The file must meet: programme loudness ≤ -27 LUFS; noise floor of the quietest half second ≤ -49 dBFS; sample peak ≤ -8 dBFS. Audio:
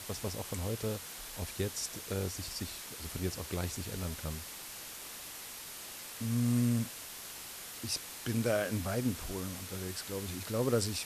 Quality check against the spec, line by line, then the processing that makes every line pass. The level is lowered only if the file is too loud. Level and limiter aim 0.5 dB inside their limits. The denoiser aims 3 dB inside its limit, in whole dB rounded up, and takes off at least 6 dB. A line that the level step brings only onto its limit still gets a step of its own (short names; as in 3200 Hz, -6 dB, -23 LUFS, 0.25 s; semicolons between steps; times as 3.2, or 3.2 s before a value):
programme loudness -36.5 LUFS: OK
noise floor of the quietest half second -46 dBFS: fail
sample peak -19.5 dBFS: OK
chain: denoiser 6 dB, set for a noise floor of -46 dBFS